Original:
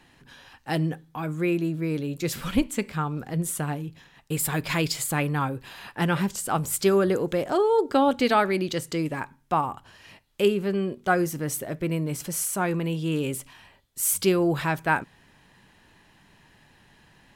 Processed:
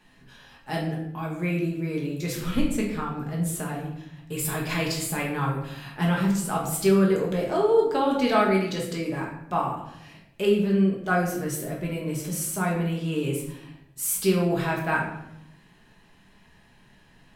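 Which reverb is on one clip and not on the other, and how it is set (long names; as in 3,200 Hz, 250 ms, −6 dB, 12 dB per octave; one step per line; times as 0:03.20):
rectangular room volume 210 cubic metres, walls mixed, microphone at 1.4 metres
level −5.5 dB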